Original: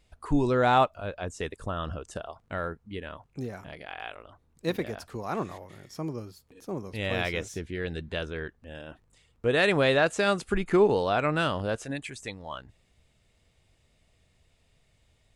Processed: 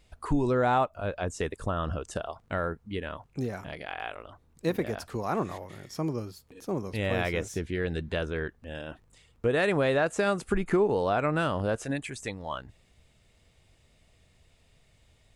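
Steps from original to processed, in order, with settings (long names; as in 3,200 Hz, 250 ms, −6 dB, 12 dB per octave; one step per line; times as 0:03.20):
dynamic equaliser 3,800 Hz, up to −7 dB, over −45 dBFS, Q 0.8
downward compressor 2.5 to 1, threshold −27 dBFS, peak gain reduction 7.5 dB
level +3.5 dB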